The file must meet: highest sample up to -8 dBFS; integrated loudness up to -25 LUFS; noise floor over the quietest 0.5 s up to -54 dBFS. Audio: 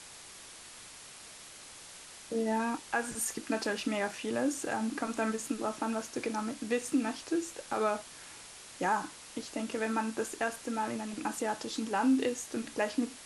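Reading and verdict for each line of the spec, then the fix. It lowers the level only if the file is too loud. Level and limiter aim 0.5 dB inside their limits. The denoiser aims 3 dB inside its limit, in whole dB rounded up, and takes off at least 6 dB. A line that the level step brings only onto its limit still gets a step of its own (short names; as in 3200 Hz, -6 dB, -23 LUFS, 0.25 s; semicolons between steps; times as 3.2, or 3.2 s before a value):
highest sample -17.0 dBFS: OK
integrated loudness -33.5 LUFS: OK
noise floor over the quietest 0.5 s -50 dBFS: fail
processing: denoiser 7 dB, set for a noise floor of -50 dBFS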